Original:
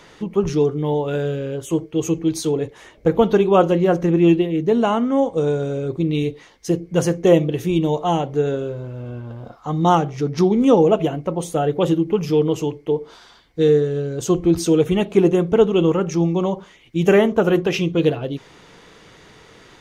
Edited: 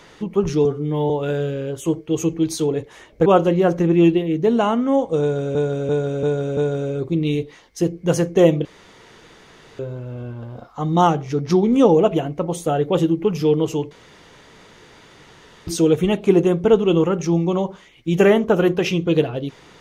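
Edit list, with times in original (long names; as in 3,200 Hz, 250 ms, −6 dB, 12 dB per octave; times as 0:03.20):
0:00.65–0:00.95: time-stretch 1.5×
0:03.11–0:03.50: remove
0:05.45–0:05.79: repeat, 5 plays
0:07.53–0:08.67: fill with room tone
0:12.79–0:14.55: fill with room tone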